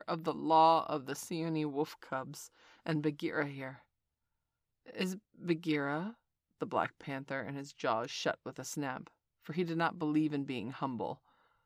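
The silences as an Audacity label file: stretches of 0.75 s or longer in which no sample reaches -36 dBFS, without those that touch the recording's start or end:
3.690000	4.980000	silence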